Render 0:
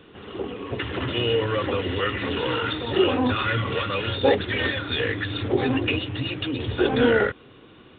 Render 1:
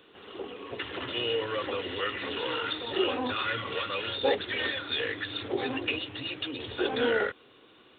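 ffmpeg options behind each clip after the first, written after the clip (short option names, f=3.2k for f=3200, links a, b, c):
-af "bass=f=250:g=-12,treble=f=4k:g=9,volume=-6dB"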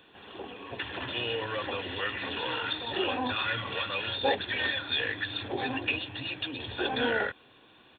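-af "aecho=1:1:1.2:0.44"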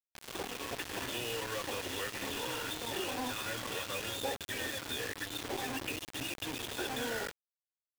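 -filter_complex "[0:a]acrossover=split=200|610[a][b][c];[a]acompressor=threshold=-55dB:ratio=4[d];[b]acompressor=threshold=-46dB:ratio=4[e];[c]acompressor=threshold=-45dB:ratio=4[f];[d][e][f]amix=inputs=3:normalize=0,acrusher=bits=6:mix=0:aa=0.000001,volume=3.5dB"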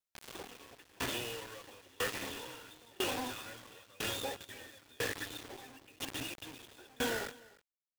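-af "aecho=1:1:301:0.224,aeval=exprs='val(0)*pow(10,-29*if(lt(mod(1*n/s,1),2*abs(1)/1000),1-mod(1*n/s,1)/(2*abs(1)/1000),(mod(1*n/s,1)-2*abs(1)/1000)/(1-2*abs(1)/1000))/20)':c=same,volume=4.5dB"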